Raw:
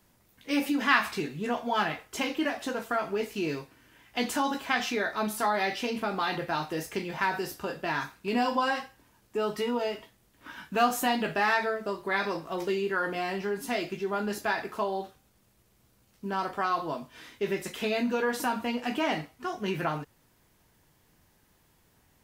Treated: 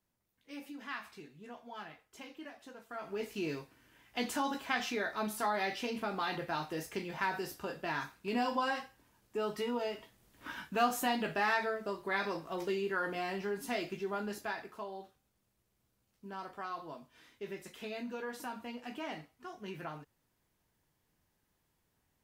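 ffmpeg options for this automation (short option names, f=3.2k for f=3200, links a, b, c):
-af "volume=1dB,afade=t=in:st=2.88:d=0.41:silence=0.223872,afade=t=in:st=9.95:d=0.56:silence=0.446684,afade=t=out:st=10.51:d=0.24:silence=0.473151,afade=t=out:st=13.98:d=0.77:silence=0.421697"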